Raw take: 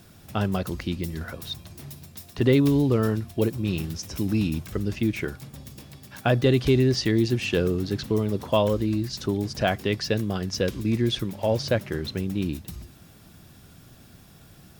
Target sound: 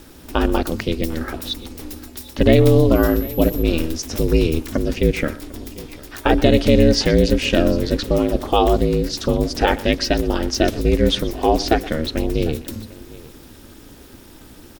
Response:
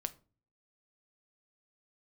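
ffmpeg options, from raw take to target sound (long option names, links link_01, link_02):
-filter_complex "[0:a]asplit=2[link_01][link_02];[link_02]aecho=0:1:749:0.0944[link_03];[link_01][link_03]amix=inputs=2:normalize=0,asettb=1/sr,asplit=3[link_04][link_05][link_06];[link_04]atrim=end=2.954[link_07];[link_05]atrim=start=2.95:end=3.63,asetpts=PTS-STARTPTS,afade=type=in:duration=0.004:curve=qsin,afade=type=out:start_time=0.676:duration=0.004:curve=qsin,aeval=exprs='val(0)+0.0112*sin(2*PI*12000*n/s)':channel_layout=same[link_08];[link_06]atrim=start=3.626[link_09];[link_07][link_08]acrossfade=duration=0.004:curve1=hsin:curve2=qsin[link_10];[link_10][link_09]acrossfade=duration=0.004:curve1=qsin:curve2=hsin,aeval=exprs='val(0)*sin(2*PI*160*n/s)':channel_layout=same,asplit=2[link_11][link_12];[link_12]aecho=0:1:122:0.1[link_13];[link_11][link_13]amix=inputs=2:normalize=0,alimiter=level_in=11.5dB:limit=-1dB:release=50:level=0:latency=1,volume=-1dB"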